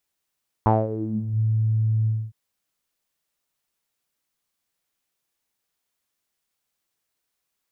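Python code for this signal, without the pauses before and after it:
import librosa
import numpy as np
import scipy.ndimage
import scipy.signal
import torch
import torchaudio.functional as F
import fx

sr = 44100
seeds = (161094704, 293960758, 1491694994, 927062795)

y = fx.sub_voice(sr, note=45, wave='saw', cutoff_hz=120.0, q=6.4, env_oct=3.0, env_s=0.7, attack_ms=1.0, decay_s=0.21, sustain_db=-14, release_s=0.25, note_s=1.41, slope=12)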